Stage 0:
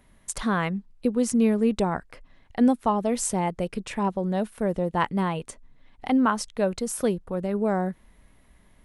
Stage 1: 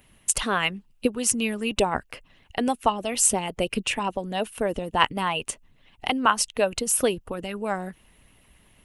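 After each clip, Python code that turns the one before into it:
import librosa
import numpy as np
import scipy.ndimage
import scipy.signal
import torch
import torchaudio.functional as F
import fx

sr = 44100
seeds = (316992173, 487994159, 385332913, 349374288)

y = fx.high_shelf(x, sr, hz=8000.0, db=10.5)
y = fx.hpss(y, sr, part='harmonic', gain_db=-12)
y = fx.peak_eq(y, sr, hz=2800.0, db=12.0, octaves=0.36)
y = y * librosa.db_to_amplitude(4.5)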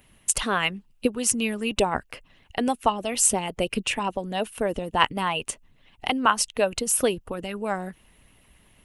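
y = x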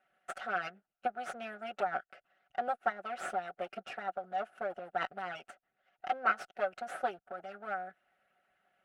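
y = fx.lower_of_two(x, sr, delay_ms=5.3)
y = fx.double_bandpass(y, sr, hz=1000.0, octaves=0.95)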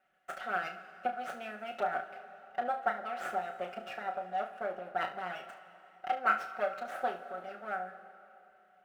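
y = scipy.ndimage.median_filter(x, 5, mode='constant')
y = fx.room_early_taps(y, sr, ms=(33, 72), db=(-7.5, -14.5))
y = fx.rev_plate(y, sr, seeds[0], rt60_s=3.1, hf_ratio=0.9, predelay_ms=0, drr_db=11.0)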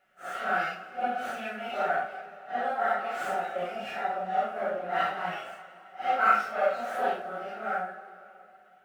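y = fx.phase_scramble(x, sr, seeds[1], window_ms=200)
y = y * librosa.db_to_amplitude(6.5)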